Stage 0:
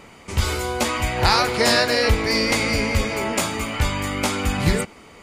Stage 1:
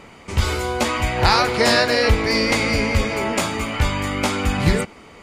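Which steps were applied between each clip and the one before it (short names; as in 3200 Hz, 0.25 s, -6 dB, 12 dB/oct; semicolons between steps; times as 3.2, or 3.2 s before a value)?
high shelf 7200 Hz -7.5 dB; gain +2 dB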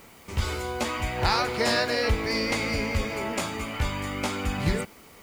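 requantised 8-bit, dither triangular; gain -8 dB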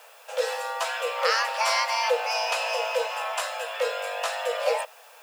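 frequency shift +430 Hz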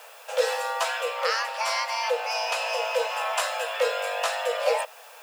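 vocal rider within 4 dB 0.5 s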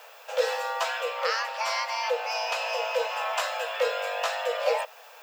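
bell 9700 Hz -11 dB 0.52 oct; gain -1.5 dB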